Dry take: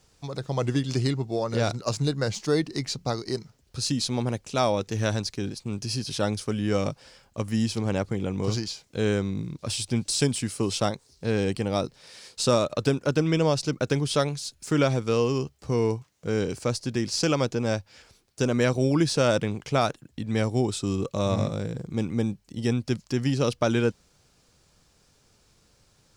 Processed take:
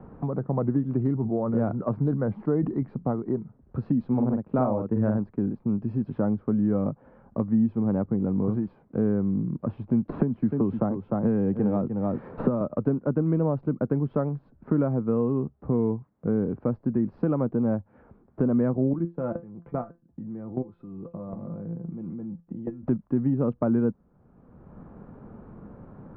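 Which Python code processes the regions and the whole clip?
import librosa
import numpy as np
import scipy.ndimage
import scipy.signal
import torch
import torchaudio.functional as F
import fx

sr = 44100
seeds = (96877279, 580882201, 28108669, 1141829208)

y = fx.chain(x, sr, fx.high_shelf(hz=5800.0, db=9.0),
    fx.sustainer(db_per_s=85.0), at=(0.99, 2.83))
y = fx.chain(y, sr, fx.transient(attack_db=5, sustain_db=-3),
    fx.doubler(ms=47.0, db=-4.0), at=(4.08, 5.18))
y = fx.chain(y, sr, fx.echo_single(ms=302, db=-10.0),
    fx.band_squash(depth_pct=100), at=(10.09, 12.61))
y = fx.chain(y, sr, fx.level_steps(step_db=22),
    fx.comb_fb(f0_hz=170.0, decay_s=0.19, harmonics='all', damping=0.0, mix_pct=80), at=(18.93, 22.83))
y = scipy.signal.sosfilt(scipy.signal.cheby2(4, 80, 6800.0, 'lowpass', fs=sr, output='sos'), y)
y = fx.peak_eq(y, sr, hz=220.0, db=10.5, octaves=0.98)
y = fx.band_squash(y, sr, depth_pct=70)
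y = y * librosa.db_to_amplitude(-4.5)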